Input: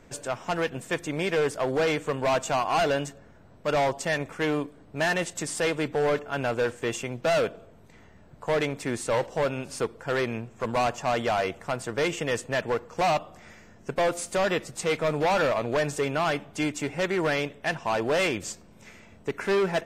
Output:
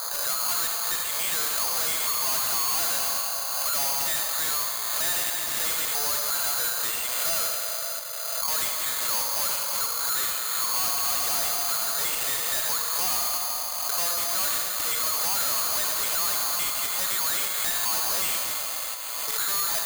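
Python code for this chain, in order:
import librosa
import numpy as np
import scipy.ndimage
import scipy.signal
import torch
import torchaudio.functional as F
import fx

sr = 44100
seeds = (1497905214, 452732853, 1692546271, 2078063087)

p1 = scipy.signal.sosfilt(scipy.signal.butter(4, 670.0, 'highpass', fs=sr, output='sos'), x)
p2 = fx.env_lowpass(p1, sr, base_hz=1200.0, full_db=-26.0)
p3 = fx.peak_eq(p2, sr, hz=1200.0, db=13.0, octaves=0.6)
p4 = fx.rev_schroeder(p3, sr, rt60_s=3.0, comb_ms=32, drr_db=8.0)
p5 = fx.level_steps(p4, sr, step_db=11)
p6 = p4 + (p5 * 10.0 ** (2.5 / 20.0))
p7 = p6 + 10.0 ** (-13.0 / 20.0) * np.pad(p6, (int(77 * sr / 1000.0), 0))[:len(p6)]
p8 = fx.tube_stage(p7, sr, drive_db=31.0, bias=0.25)
p9 = (np.kron(p8[::8], np.eye(8)[0]) * 8)[:len(p8)]
p10 = fx.pre_swell(p9, sr, db_per_s=22.0)
y = p10 * 10.0 ** (-2.5 / 20.0)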